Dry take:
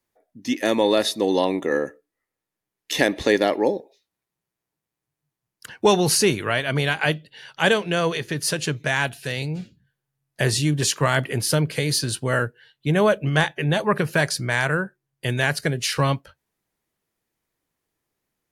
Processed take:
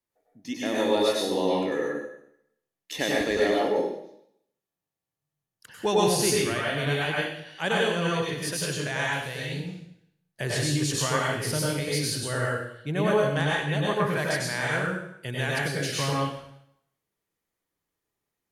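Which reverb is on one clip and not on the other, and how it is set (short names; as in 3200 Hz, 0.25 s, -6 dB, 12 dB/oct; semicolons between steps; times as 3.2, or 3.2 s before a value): plate-style reverb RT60 0.72 s, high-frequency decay 1×, pre-delay 85 ms, DRR -4.5 dB; gain -10 dB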